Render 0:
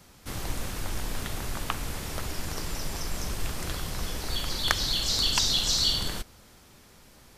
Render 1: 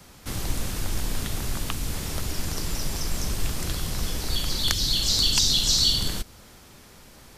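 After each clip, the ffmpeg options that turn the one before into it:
-filter_complex "[0:a]acrossover=split=360|3000[s0][s1][s2];[s1]acompressor=threshold=0.00398:ratio=2[s3];[s0][s3][s2]amix=inputs=3:normalize=0,volume=1.78"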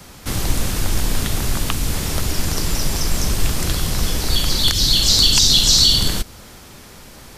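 -af "alimiter=level_in=2.99:limit=0.891:release=50:level=0:latency=1,volume=0.891"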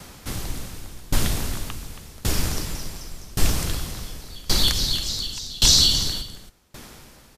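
-filter_complex "[0:a]asplit=2[s0][s1];[s1]aecho=0:1:275:0.531[s2];[s0][s2]amix=inputs=2:normalize=0,aeval=exprs='val(0)*pow(10,-25*if(lt(mod(0.89*n/s,1),2*abs(0.89)/1000),1-mod(0.89*n/s,1)/(2*abs(0.89)/1000),(mod(0.89*n/s,1)-2*abs(0.89)/1000)/(1-2*abs(0.89)/1000))/20)':c=same"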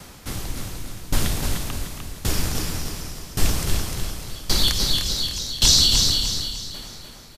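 -af "aecho=1:1:301|602|903|1204|1505:0.531|0.218|0.0892|0.0366|0.015"

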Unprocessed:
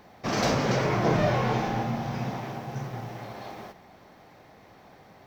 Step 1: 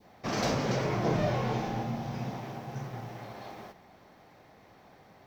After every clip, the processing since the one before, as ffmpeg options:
-af "adynamicequalizer=threshold=0.01:dfrequency=1500:dqfactor=0.79:tfrequency=1500:tqfactor=0.79:attack=5:release=100:ratio=0.375:range=2:mode=cutabove:tftype=bell,volume=0.631"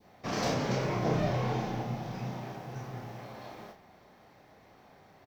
-filter_complex "[0:a]asplit=2[s0][s1];[s1]adelay=32,volume=0.596[s2];[s0][s2]amix=inputs=2:normalize=0,volume=0.75"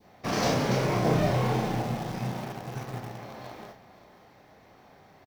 -filter_complex "[0:a]asplit=2[s0][s1];[s1]acrusher=bits=5:mix=0:aa=0.000001,volume=0.299[s2];[s0][s2]amix=inputs=2:normalize=0,aecho=1:1:520:0.15,volume=1.33"

